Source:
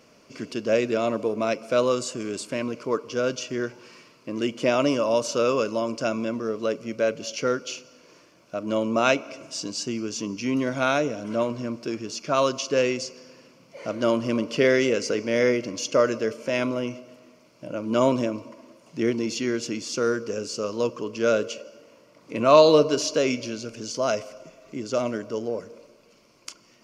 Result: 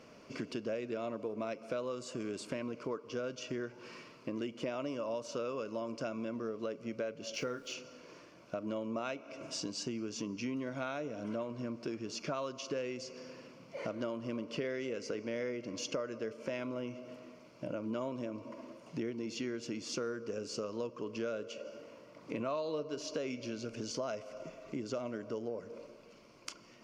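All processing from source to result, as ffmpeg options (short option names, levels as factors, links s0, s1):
-filter_complex "[0:a]asettb=1/sr,asplit=3[s0][s1][s2];[s0]atrim=end=7.344[s3];[s1]atrim=start=7.34:end=7.74,asetpts=PTS-STARTPTS,afade=t=in:d=0.004:c=qsin,afade=t=out:st=0.396:d=0.004:c=qsin,acrusher=bits=9:dc=4:mix=0:aa=0.000001,asplit=2[s4][s5];[s5]adelay=33,volume=0.282[s6];[s4][s6]amix=inputs=2:normalize=0,atrim=end_sample=17640[s7];[s2]atrim=start=7.736[s8];[s3][s7]acrossfade=d=0.004:c1=hsin:c2=qsin[s9];[s9][s8]acrossfade=d=0.004:c1=qsin:c2=hsin,highshelf=f=5200:g=-10.5,acompressor=threshold=0.0158:ratio=6"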